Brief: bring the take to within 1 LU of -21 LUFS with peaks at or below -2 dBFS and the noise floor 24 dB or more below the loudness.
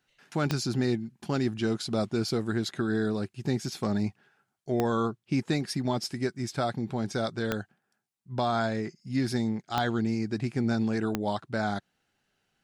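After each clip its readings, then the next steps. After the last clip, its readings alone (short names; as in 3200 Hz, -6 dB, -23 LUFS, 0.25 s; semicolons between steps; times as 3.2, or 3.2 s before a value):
clicks 5; loudness -30.0 LUFS; peak -11.5 dBFS; loudness target -21.0 LUFS
-> de-click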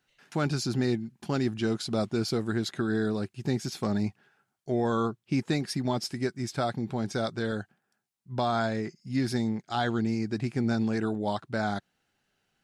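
clicks 2; loudness -30.0 LUFS; peak -16.0 dBFS; loudness target -21.0 LUFS
-> gain +9 dB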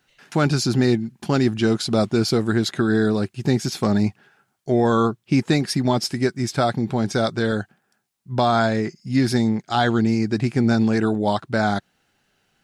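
loudness -21.0 LUFS; peak -7.0 dBFS; noise floor -70 dBFS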